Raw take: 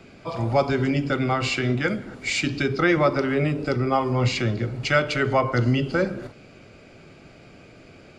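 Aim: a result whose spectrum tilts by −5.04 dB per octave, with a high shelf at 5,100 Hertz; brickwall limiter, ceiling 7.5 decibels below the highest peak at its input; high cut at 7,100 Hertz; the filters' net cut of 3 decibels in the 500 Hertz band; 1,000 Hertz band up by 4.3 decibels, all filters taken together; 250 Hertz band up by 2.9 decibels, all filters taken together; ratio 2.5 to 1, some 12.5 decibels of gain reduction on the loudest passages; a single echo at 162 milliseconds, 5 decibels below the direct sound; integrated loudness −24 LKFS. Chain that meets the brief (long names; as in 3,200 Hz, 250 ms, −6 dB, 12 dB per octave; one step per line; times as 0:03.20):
low-pass filter 7,100 Hz
parametric band 250 Hz +5.5 dB
parametric band 500 Hz −8 dB
parametric band 1,000 Hz +8 dB
high-shelf EQ 5,100 Hz −7.5 dB
downward compressor 2.5 to 1, threshold −33 dBFS
brickwall limiter −25 dBFS
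single-tap delay 162 ms −5 dB
level +9 dB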